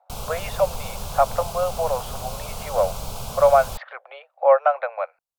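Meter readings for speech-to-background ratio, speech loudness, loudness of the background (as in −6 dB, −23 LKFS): 11.0 dB, −22.5 LKFS, −33.5 LKFS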